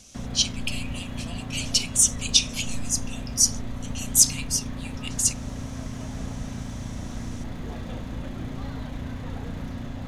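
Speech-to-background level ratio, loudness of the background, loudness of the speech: 12.0 dB, −35.0 LKFS, −23.0 LKFS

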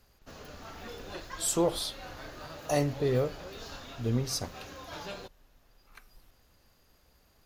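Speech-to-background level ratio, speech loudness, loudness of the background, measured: 13.5 dB, −31.0 LKFS, −44.5 LKFS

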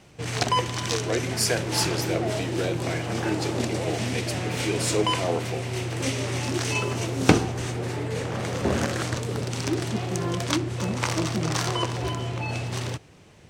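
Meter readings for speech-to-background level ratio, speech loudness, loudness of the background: −2.0 dB, −29.5 LKFS, −27.5 LKFS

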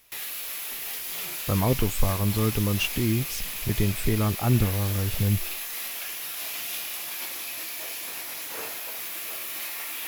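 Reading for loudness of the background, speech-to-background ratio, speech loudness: −31.0 LKFS, 4.5 dB, −26.5 LKFS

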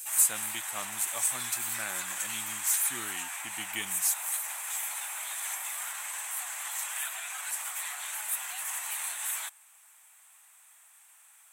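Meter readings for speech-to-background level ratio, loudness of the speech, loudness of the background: 0.5 dB, −32.5 LKFS, −33.0 LKFS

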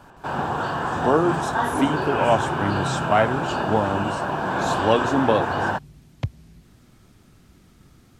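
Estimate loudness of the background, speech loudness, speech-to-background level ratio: −25.0 LKFS, −24.0 LKFS, 1.0 dB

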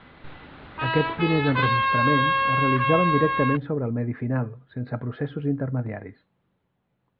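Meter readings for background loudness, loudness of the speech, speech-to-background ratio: −23.5 LKFS, −26.5 LKFS, −3.0 dB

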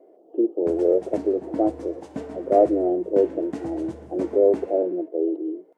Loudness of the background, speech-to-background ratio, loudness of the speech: −37.5 LKFS, 14.0 dB, −23.5 LKFS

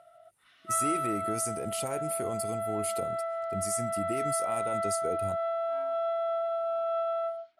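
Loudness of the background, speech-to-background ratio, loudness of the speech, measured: −32.0 LKFS, −3.0 dB, −35.0 LKFS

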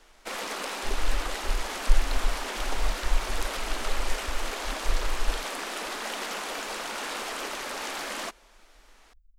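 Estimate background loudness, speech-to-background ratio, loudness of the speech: −33.0 LKFS, −4.0 dB, −37.0 LKFS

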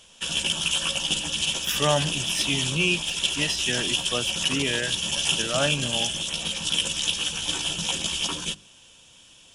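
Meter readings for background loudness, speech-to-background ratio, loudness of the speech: −25.0 LKFS, −3.0 dB, −28.0 LKFS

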